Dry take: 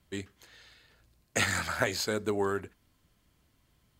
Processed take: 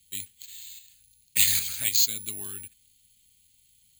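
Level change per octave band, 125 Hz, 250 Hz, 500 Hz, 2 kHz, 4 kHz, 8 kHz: −6.5, −13.5, −22.0, −5.0, +8.0, +11.5 decibels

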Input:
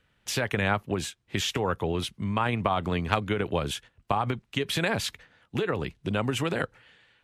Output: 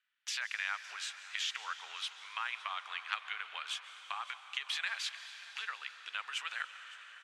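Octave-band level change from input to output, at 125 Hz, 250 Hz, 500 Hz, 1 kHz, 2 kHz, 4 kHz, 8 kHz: below −40 dB, below −40 dB, −34.5 dB, −12.5 dB, −5.5 dB, −4.5 dB, −8.0 dB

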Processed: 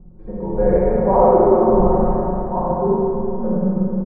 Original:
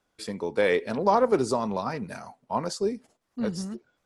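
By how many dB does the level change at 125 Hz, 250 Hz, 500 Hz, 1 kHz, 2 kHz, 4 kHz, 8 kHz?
+14.5 dB, +11.5 dB, +10.5 dB, +9.0 dB, can't be measured, below −35 dB, below −40 dB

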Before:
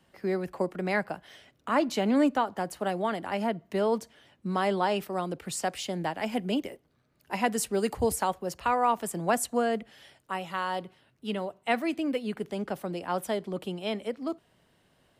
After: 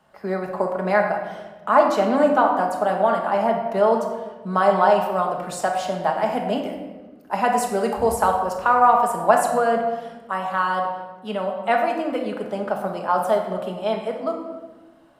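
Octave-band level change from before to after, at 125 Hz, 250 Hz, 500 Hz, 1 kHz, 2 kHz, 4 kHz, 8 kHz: +3.5, +3.0, +10.0, +11.5, +7.5, +1.0, +0.5 decibels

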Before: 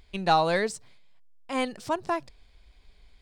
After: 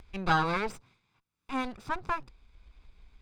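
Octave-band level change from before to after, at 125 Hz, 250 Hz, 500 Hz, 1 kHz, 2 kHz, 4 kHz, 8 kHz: +0.5, −3.0, −9.5, −4.0, −0.5, −6.5, −10.5 decibels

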